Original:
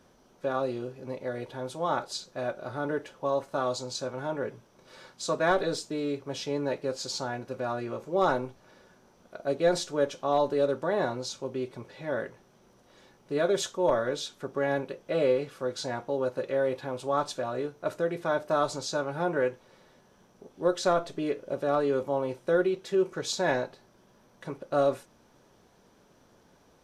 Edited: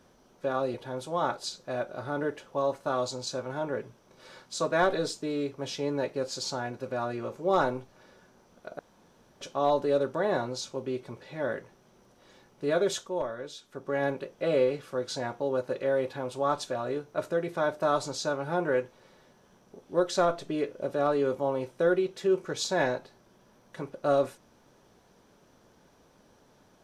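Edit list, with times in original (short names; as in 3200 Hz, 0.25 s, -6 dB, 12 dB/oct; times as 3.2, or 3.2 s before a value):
0.74–1.42 cut
9.47–10.09 room tone
13.5–14.74 dip -9 dB, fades 0.46 s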